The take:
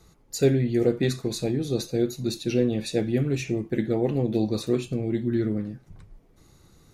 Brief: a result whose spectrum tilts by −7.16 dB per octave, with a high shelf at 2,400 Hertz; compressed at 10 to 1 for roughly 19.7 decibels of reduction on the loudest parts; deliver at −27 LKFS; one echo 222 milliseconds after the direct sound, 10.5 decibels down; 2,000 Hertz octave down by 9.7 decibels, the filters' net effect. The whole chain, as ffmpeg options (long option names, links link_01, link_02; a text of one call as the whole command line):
ffmpeg -i in.wav -af "equalizer=frequency=2000:width_type=o:gain=-8.5,highshelf=frequency=2400:gain=-7,acompressor=threshold=-37dB:ratio=10,aecho=1:1:222:0.299,volume=15dB" out.wav